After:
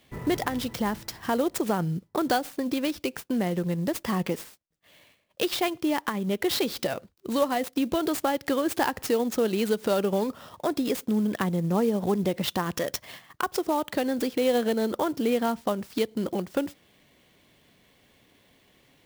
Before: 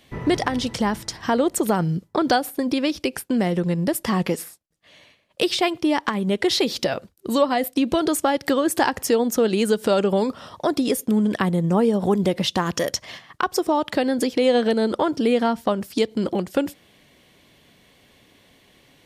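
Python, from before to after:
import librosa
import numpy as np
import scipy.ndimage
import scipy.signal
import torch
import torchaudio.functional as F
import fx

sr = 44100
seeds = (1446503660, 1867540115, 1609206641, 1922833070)

y = fx.clock_jitter(x, sr, seeds[0], jitter_ms=0.025)
y = y * librosa.db_to_amplitude(-5.5)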